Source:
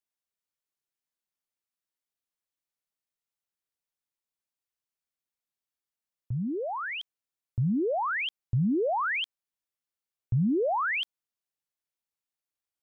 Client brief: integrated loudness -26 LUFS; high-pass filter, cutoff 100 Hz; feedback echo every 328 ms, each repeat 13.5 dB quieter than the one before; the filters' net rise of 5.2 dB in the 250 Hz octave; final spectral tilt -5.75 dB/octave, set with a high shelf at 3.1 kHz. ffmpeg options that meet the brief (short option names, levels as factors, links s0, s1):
-af "highpass=100,equalizer=f=250:t=o:g=7,highshelf=f=3100:g=-5.5,aecho=1:1:328|656:0.211|0.0444,volume=1.06"